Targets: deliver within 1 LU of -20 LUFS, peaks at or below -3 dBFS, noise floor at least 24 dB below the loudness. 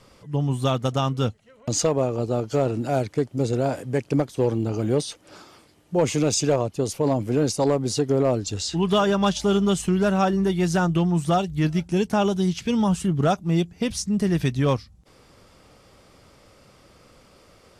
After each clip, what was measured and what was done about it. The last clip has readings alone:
clipped samples 0.4%; clipping level -12.0 dBFS; loudness -23.0 LUFS; peak level -12.0 dBFS; loudness target -20.0 LUFS
-> clip repair -12 dBFS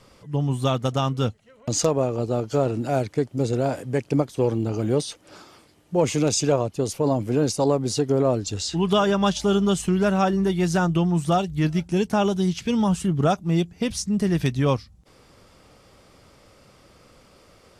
clipped samples 0.0%; loudness -23.0 LUFS; peak level -5.0 dBFS; loudness target -20.0 LUFS
-> trim +3 dB; peak limiter -3 dBFS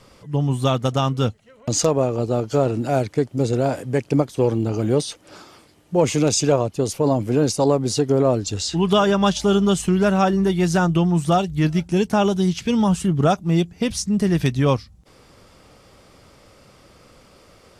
loudness -20.0 LUFS; peak level -3.0 dBFS; noise floor -52 dBFS

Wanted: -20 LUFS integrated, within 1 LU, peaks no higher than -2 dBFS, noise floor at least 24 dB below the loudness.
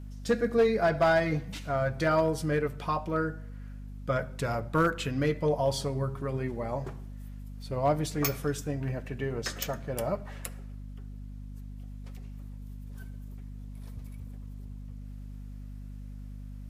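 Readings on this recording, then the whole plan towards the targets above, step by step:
clipped samples 0.2%; clipping level -17.5 dBFS; hum 50 Hz; highest harmonic 250 Hz; hum level -39 dBFS; loudness -30.0 LUFS; peak level -17.5 dBFS; loudness target -20.0 LUFS
-> clip repair -17.5 dBFS; de-hum 50 Hz, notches 5; trim +10 dB

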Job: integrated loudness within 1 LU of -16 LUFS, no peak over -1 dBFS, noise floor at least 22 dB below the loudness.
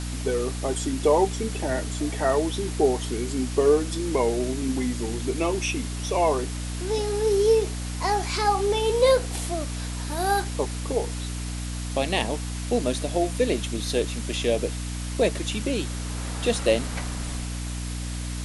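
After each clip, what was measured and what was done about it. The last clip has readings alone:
hum 60 Hz; highest harmonic 300 Hz; hum level -29 dBFS; noise floor -31 dBFS; noise floor target -48 dBFS; loudness -25.5 LUFS; peak level -7.5 dBFS; loudness target -16.0 LUFS
-> de-hum 60 Hz, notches 5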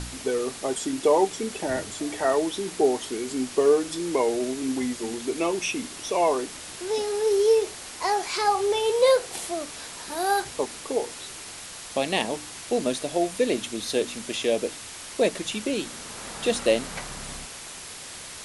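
hum not found; noise floor -40 dBFS; noise floor target -48 dBFS
-> noise reduction 8 dB, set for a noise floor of -40 dBFS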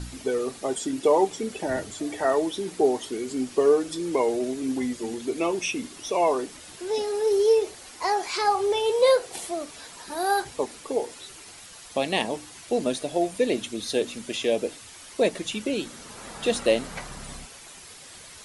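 noise floor -46 dBFS; noise floor target -48 dBFS
-> noise reduction 6 dB, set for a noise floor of -46 dBFS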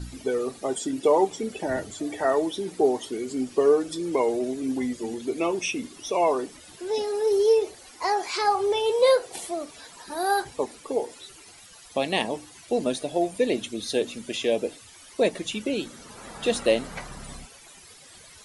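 noise floor -49 dBFS; loudness -26.0 LUFS; peak level -9.0 dBFS; loudness target -16.0 LUFS
-> trim +10 dB; peak limiter -1 dBFS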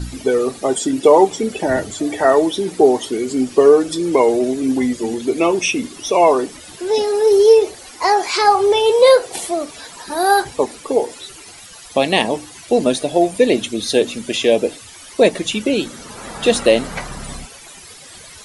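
loudness -16.0 LUFS; peak level -1.0 dBFS; noise floor -39 dBFS

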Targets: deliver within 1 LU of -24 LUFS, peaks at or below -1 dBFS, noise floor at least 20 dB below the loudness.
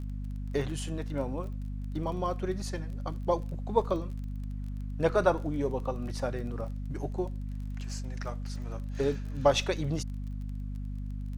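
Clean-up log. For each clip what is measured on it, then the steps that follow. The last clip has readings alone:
tick rate 24 per s; hum 50 Hz; highest harmonic 250 Hz; hum level -33 dBFS; loudness -33.0 LUFS; peak level -10.0 dBFS; loudness target -24.0 LUFS
-> de-click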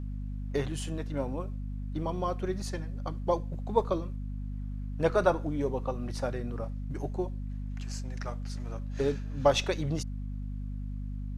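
tick rate 0 per s; hum 50 Hz; highest harmonic 250 Hz; hum level -33 dBFS
-> hum notches 50/100/150/200/250 Hz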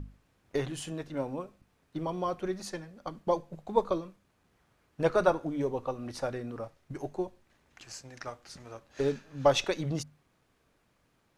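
hum not found; loudness -33.0 LUFS; peak level -10.5 dBFS; loudness target -24.0 LUFS
-> trim +9 dB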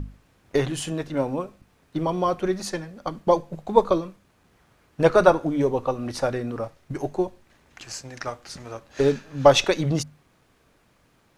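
loudness -24.0 LUFS; peak level -1.5 dBFS; noise floor -62 dBFS

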